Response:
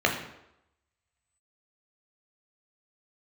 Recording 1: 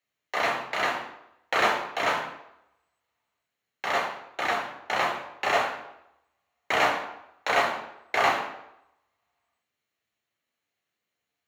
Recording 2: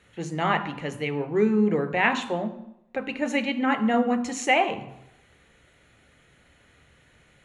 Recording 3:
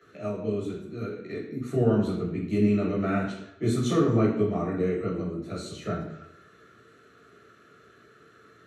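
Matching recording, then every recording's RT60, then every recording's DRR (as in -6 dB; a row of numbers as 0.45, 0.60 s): 1; 0.85, 0.85, 0.85 s; 0.5, 8.5, -7.5 dB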